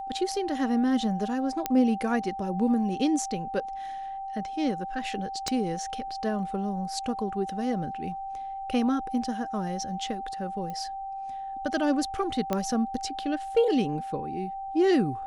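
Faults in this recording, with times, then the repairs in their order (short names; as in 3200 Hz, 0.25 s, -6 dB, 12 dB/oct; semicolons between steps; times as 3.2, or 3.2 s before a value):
tone 780 Hz -33 dBFS
1.66 pop -10 dBFS
5.48 pop -14 dBFS
10.7 pop -24 dBFS
12.53 pop -13 dBFS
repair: de-click; notch 780 Hz, Q 30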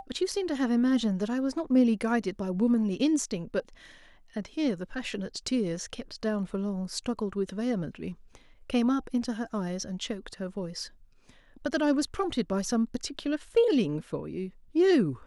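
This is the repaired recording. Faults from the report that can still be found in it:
1.66 pop
5.48 pop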